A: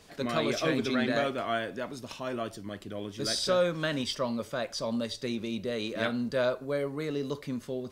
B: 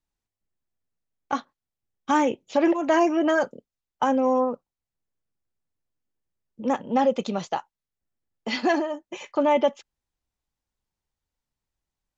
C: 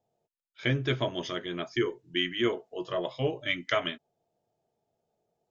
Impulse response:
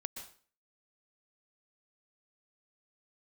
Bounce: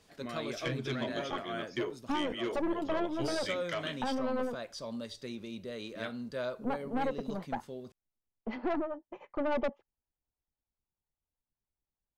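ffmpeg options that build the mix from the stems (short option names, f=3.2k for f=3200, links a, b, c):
-filter_complex "[0:a]volume=-8.5dB[a];[1:a]acrossover=split=510[b][c];[b]aeval=exprs='val(0)*(1-0.7/2+0.7/2*cos(2*PI*9.9*n/s))':c=same[d];[c]aeval=exprs='val(0)*(1-0.7/2-0.7/2*cos(2*PI*9.9*n/s))':c=same[e];[d][e]amix=inputs=2:normalize=0,lowpass=1.1k,aeval=exprs='(tanh(20*val(0)+0.55)-tanh(0.55))/20':c=same,volume=-1dB[f];[2:a]aeval=exprs='0.282*(cos(1*acos(clip(val(0)/0.282,-1,1)))-cos(1*PI/2))+0.0631*(cos(5*acos(clip(val(0)/0.282,-1,1)))-cos(5*PI/2))':c=same,volume=-12dB[g];[a][f][g]amix=inputs=3:normalize=0,alimiter=limit=-23.5dB:level=0:latency=1:release=342"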